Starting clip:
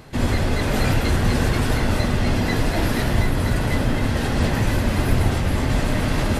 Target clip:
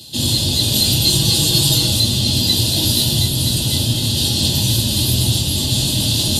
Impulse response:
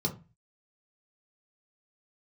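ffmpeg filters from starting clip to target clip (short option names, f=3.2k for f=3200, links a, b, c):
-filter_complex "[0:a]asettb=1/sr,asplit=3[a][b][c];[a]atrim=end=1.034[d];[b]atrim=start=1.03:end=1.9,asetpts=PTS-STARTPTS,afade=t=in:d=0.004:c=qsin,afade=t=out:st=0.866:d=0.004:c=qsin,aecho=1:1:6.2:0.66,atrim=end_sample=38367[e];[c]atrim=start=1.896[f];[d][e]acrossfade=d=0.004:c1=hsin:c2=qsin[g];[g][f]acrossfade=d=0.004:c1=qsin:c2=hsin,acrossover=split=110[h][i];[i]aexciter=amount=13.4:drive=9.1:freq=3.1k[j];[h][j]amix=inputs=2:normalize=0[k];[1:a]atrim=start_sample=2205,asetrate=34839,aresample=44100[l];[k][l]afir=irnorm=-1:irlink=0,volume=-15.5dB"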